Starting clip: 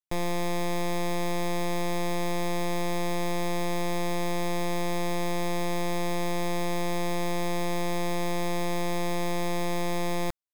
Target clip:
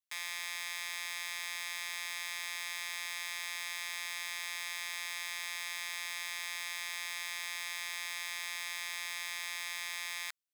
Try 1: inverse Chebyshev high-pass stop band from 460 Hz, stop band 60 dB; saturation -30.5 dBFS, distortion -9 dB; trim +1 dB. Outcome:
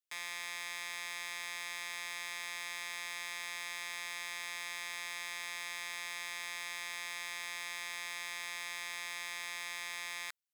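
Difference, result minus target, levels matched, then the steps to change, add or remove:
saturation: distortion +7 dB
change: saturation -24 dBFS, distortion -16 dB

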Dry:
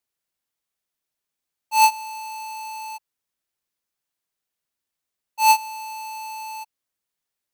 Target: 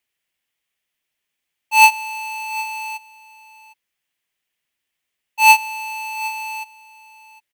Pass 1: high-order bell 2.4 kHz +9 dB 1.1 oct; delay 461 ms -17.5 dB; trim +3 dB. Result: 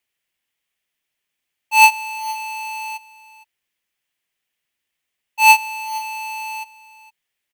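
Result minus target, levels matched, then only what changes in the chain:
echo 295 ms early
change: delay 756 ms -17.5 dB

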